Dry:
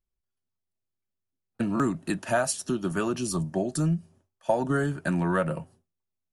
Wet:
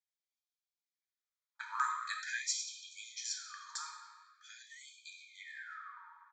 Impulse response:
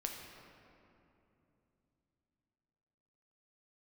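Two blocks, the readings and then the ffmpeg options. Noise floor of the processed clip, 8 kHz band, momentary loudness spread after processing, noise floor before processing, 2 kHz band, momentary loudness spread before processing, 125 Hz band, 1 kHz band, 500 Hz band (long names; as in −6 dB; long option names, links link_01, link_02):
below −85 dBFS, −5.0 dB, 18 LU, −84 dBFS, −7.5 dB, 6 LU, below −40 dB, −9.0 dB, below −40 dB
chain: -filter_complex "[0:a]asuperstop=centerf=2800:order=12:qfactor=4.6,aresample=16000,aresample=44100[link_01];[1:a]atrim=start_sample=2205,asetrate=74970,aresample=44100[link_02];[link_01][link_02]afir=irnorm=-1:irlink=0,afftfilt=real='re*gte(b*sr/1024,820*pow(2300/820,0.5+0.5*sin(2*PI*0.44*pts/sr)))':imag='im*gte(b*sr/1024,820*pow(2300/820,0.5+0.5*sin(2*PI*0.44*pts/sr)))':win_size=1024:overlap=0.75,volume=5dB"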